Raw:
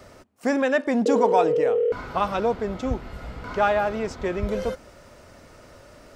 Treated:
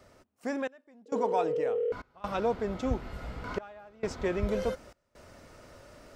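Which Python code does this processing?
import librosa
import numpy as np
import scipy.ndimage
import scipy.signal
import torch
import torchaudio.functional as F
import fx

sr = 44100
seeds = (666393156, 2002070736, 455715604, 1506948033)

y = fx.step_gate(x, sr, bpm=67, pattern='xxx..xxxx.xxx', floor_db=-24.0, edge_ms=4.5)
y = fx.rider(y, sr, range_db=4, speed_s=2.0)
y = y * 10.0 ** (-6.5 / 20.0)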